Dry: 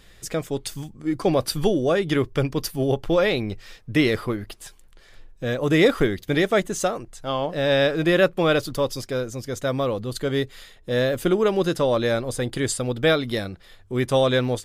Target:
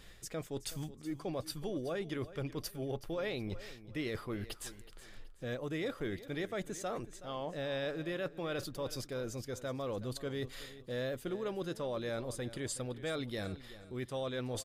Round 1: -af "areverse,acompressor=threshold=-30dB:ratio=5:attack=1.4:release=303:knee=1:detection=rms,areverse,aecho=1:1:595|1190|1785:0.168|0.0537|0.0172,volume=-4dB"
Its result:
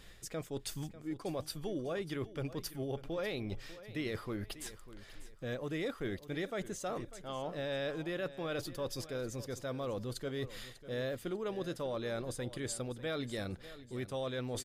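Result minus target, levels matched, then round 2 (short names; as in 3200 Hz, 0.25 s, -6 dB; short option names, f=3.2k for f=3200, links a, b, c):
echo 0.222 s late
-af "areverse,acompressor=threshold=-30dB:ratio=5:attack=1.4:release=303:knee=1:detection=rms,areverse,aecho=1:1:373|746|1119:0.168|0.0537|0.0172,volume=-4dB"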